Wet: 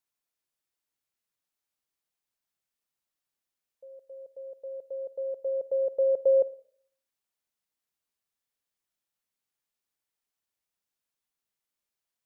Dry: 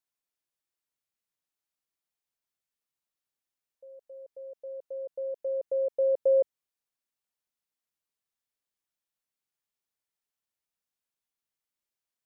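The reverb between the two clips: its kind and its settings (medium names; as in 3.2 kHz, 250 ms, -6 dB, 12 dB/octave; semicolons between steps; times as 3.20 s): Schroeder reverb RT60 0.57 s, DRR 17.5 dB; trim +1.5 dB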